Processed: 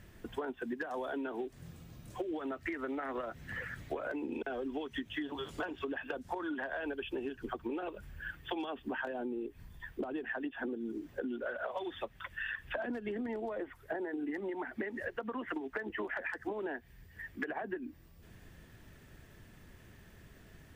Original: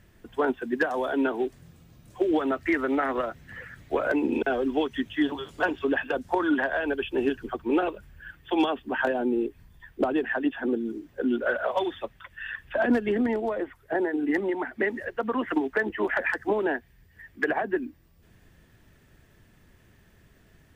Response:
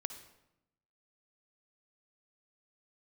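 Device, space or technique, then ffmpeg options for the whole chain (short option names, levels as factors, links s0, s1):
serial compression, leveller first: -af "acompressor=threshold=0.0355:ratio=2.5,acompressor=threshold=0.0141:ratio=6,volume=1.19"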